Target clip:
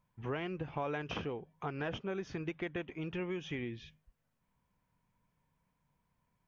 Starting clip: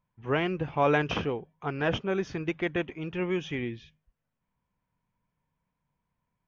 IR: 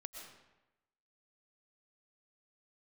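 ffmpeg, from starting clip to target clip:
-af "acompressor=threshold=-40dB:ratio=4,volume=2.5dB"

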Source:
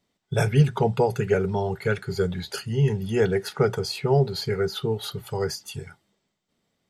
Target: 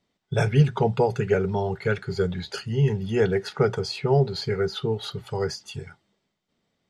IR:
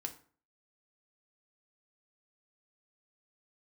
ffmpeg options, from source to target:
-af "lowpass=6300"

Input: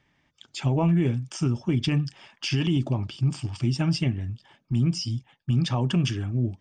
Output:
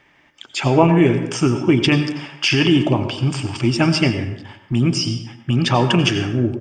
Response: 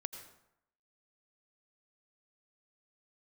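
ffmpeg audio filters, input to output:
-filter_complex "[0:a]asplit=2[link_01][link_02];[link_02]firequalizer=gain_entry='entry(130,0);entry(320,13);entry(2600,15);entry(3700,8)':delay=0.05:min_phase=1[link_03];[1:a]atrim=start_sample=2205[link_04];[link_03][link_04]afir=irnorm=-1:irlink=0,volume=4.5dB[link_05];[link_01][link_05]amix=inputs=2:normalize=0,volume=-3dB"

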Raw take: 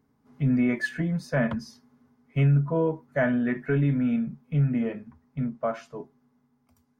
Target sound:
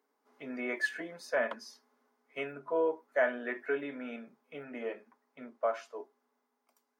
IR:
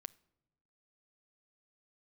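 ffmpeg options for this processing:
-af "highpass=frequency=390:width=0.5412,highpass=frequency=390:width=1.3066,volume=-2.5dB"

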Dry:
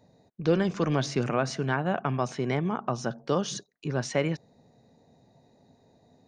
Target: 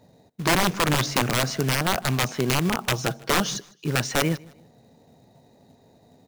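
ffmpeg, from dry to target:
ffmpeg -i in.wav -filter_complex "[0:a]asettb=1/sr,asplit=3[link_01][link_02][link_03];[link_01]atrim=end=2.914[link_04];[link_02]atrim=start=2.91:end=3.51,asetpts=PTS-STARTPTS,afade=type=in:duration=0.004:curve=qsin,afade=type=out:start_time=0.596:duration=0.004:curve=qsin,aecho=1:1:6.3:0.6,atrim=end_sample=26460[link_05];[link_03]atrim=start=3.506[link_06];[link_04][link_05]acrossfade=duration=0.004:curve1=hsin:curve2=qsin[link_07];[link_07][link_06]acrossfade=duration=0.004:curve1=qsin:curve2=hsin,acrusher=bits=4:mode=log:mix=0:aa=0.000001,aeval=exprs='(mod(7.94*val(0)+1,2)-1)/7.94':channel_layout=same,aecho=1:1:155|310:0.0631|0.0183,volume=5dB" out.wav

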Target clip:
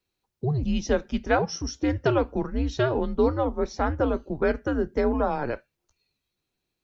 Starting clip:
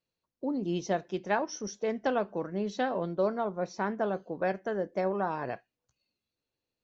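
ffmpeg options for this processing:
ffmpeg -i in.wav -af "afreqshift=-140,volume=6.5dB" out.wav

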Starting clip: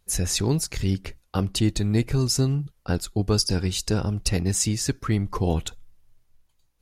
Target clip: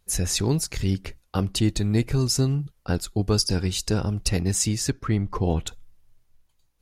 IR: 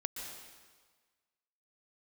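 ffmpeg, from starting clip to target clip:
-filter_complex "[0:a]asettb=1/sr,asplit=3[link_01][link_02][link_03];[link_01]atrim=end=4.904[link_04];[link_02]atrim=start=4.9:end=5.67,asetpts=PTS-STARTPTS,afade=type=in:duration=0.004:curve=qsin,afade=type=out:start_time=0.766:duration=0.004:curve=qsin,lowpass=frequency=3000:poles=1[link_05];[link_03]atrim=start=5.666[link_06];[link_04][link_05]acrossfade=duration=0.004:curve1=hsin:curve2=qsin[link_07];[link_07][link_06]acrossfade=duration=0.004:curve1=qsin:curve2=hsin"

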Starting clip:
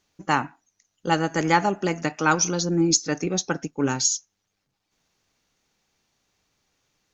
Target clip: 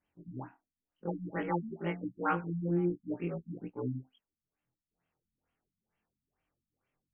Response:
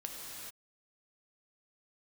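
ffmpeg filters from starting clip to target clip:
-af "afftfilt=real='re':imag='-im':win_size=2048:overlap=0.75,afftfilt=real='re*lt(b*sr/1024,250*pow(3400/250,0.5+0.5*sin(2*PI*2.2*pts/sr)))':imag='im*lt(b*sr/1024,250*pow(3400/250,0.5+0.5*sin(2*PI*2.2*pts/sr)))':win_size=1024:overlap=0.75,volume=-5.5dB"

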